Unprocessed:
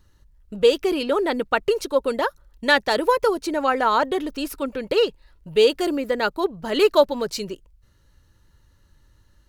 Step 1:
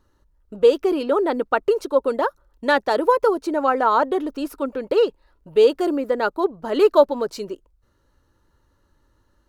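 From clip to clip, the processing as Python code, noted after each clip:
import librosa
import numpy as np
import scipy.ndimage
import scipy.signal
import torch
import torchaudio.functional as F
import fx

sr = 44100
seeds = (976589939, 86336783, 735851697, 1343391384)

y = fx.band_shelf(x, sr, hz=590.0, db=9.0, octaves=2.9)
y = y * 10.0 ** (-7.0 / 20.0)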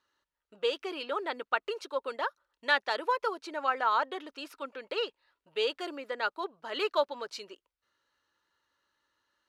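y = fx.bandpass_q(x, sr, hz=2800.0, q=1.0)
y = y * 10.0 ** (-1.0 / 20.0)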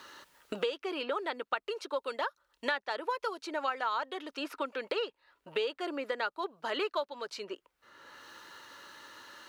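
y = fx.band_squash(x, sr, depth_pct=100)
y = y * 10.0 ** (-3.0 / 20.0)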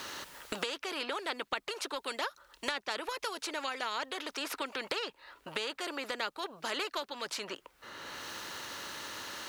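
y = fx.spectral_comp(x, sr, ratio=2.0)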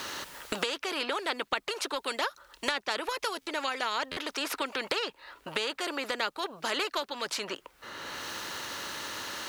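y = fx.buffer_glitch(x, sr, at_s=(3.41, 4.11), block=512, repeats=4)
y = y * 10.0 ** (4.5 / 20.0)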